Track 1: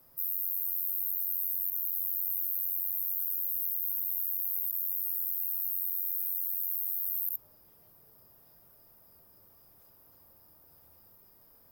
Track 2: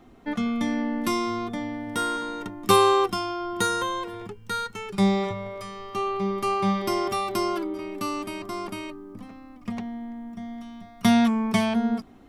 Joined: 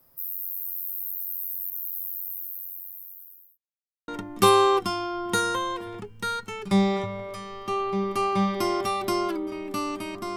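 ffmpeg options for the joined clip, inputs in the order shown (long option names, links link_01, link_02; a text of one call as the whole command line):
ffmpeg -i cue0.wav -i cue1.wav -filter_complex "[0:a]apad=whole_dur=10.36,atrim=end=10.36,asplit=2[link_01][link_02];[link_01]atrim=end=3.58,asetpts=PTS-STARTPTS,afade=type=out:start_time=1.97:duration=1.61[link_03];[link_02]atrim=start=3.58:end=4.08,asetpts=PTS-STARTPTS,volume=0[link_04];[1:a]atrim=start=2.35:end=8.63,asetpts=PTS-STARTPTS,afade=type=in:duration=0.004:curve=hsin[link_05];[link_03][link_04][link_05]concat=n=3:v=0:a=1" out.wav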